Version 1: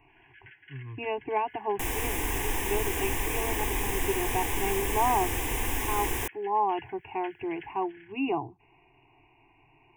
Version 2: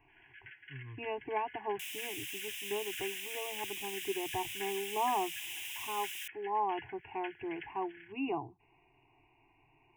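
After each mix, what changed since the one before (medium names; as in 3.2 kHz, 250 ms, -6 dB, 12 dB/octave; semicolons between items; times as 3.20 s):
speech -6.5 dB; second sound: add ladder high-pass 2.5 kHz, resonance 55%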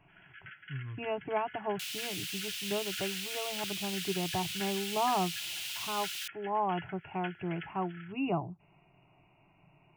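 master: remove static phaser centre 890 Hz, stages 8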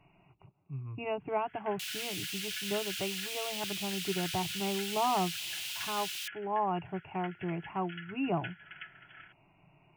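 first sound: entry +1.20 s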